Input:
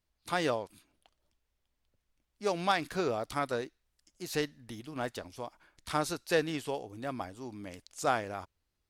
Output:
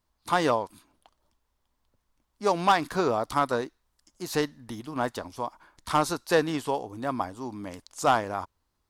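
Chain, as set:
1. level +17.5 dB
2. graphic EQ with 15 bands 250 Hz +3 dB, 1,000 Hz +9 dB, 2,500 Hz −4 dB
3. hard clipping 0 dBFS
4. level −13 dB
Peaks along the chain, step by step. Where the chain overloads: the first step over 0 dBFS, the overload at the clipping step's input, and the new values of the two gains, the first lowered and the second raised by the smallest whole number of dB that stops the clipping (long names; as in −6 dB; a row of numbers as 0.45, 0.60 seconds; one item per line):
+2.5, +7.0, 0.0, −13.0 dBFS
step 1, 7.0 dB
step 1 +10.5 dB, step 4 −6 dB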